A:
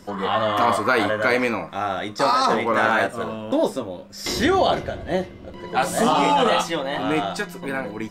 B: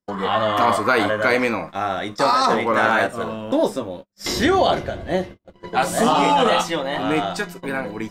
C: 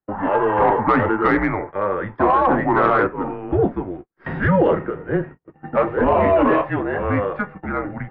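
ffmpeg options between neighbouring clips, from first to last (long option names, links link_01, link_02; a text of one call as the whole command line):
ffmpeg -i in.wav -af "agate=range=-43dB:threshold=-34dB:ratio=16:detection=peak,volume=1.5dB" out.wav
ffmpeg -i in.wav -af "highpass=frequency=310:width_type=q:width=0.5412,highpass=frequency=310:width_type=q:width=1.307,lowpass=frequency=2200:width_type=q:width=0.5176,lowpass=frequency=2200:width_type=q:width=0.7071,lowpass=frequency=2200:width_type=q:width=1.932,afreqshift=-200,acontrast=37,volume=-3dB" out.wav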